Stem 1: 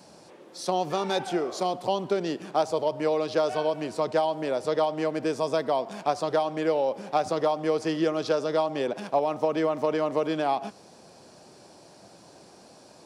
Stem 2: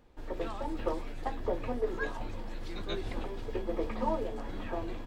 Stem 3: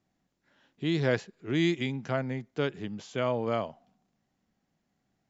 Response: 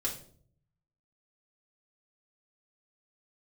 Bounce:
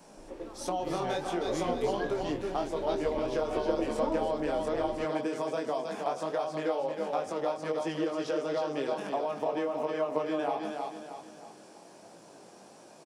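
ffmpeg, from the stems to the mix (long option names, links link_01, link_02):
-filter_complex "[0:a]flanger=delay=17.5:depth=5.3:speed=1.4,highpass=170,volume=2dB,asplit=2[link_01][link_02];[link_02]volume=-10.5dB[link_03];[1:a]equalizer=frequency=330:width_type=o:width=2.3:gain=9,volume=-10.5dB,afade=type=in:start_time=1.4:duration=0.29:silence=0.446684,asplit=2[link_04][link_05];[link_05]volume=-6.5dB[link_06];[2:a]volume=-10.5dB[link_07];[link_01][link_07]amix=inputs=2:normalize=0,equalizer=frequency=4400:width_type=o:width=0.42:gain=-10,acompressor=threshold=-29dB:ratio=6,volume=0dB[link_08];[3:a]atrim=start_sample=2205[link_09];[link_06][link_09]afir=irnorm=-1:irlink=0[link_10];[link_03]aecho=0:1:315|630|945|1260|1575|1890:1|0.42|0.176|0.0741|0.0311|0.0131[link_11];[link_04][link_08][link_10][link_11]amix=inputs=4:normalize=0"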